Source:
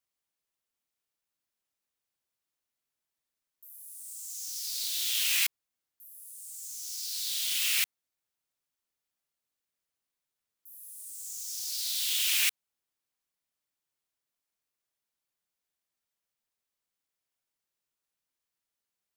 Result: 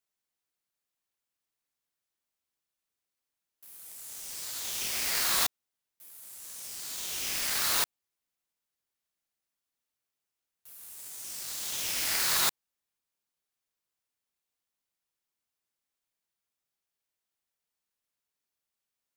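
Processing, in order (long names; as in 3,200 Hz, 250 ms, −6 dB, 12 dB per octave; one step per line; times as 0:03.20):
ring modulator with a square carrier 1,400 Hz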